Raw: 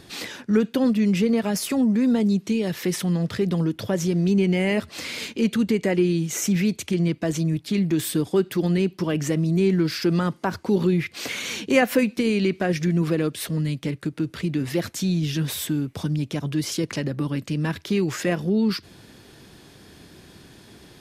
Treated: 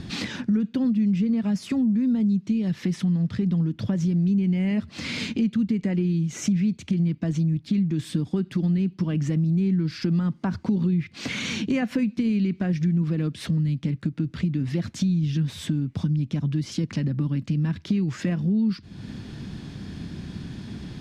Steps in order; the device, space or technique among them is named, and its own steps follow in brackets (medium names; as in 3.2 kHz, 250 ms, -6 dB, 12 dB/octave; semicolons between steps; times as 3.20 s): jukebox (low-pass 5.9 kHz 12 dB/octave; resonant low shelf 300 Hz +10 dB, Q 1.5; compression 3:1, threshold -30 dBFS, peak gain reduction 18 dB); trim +3.5 dB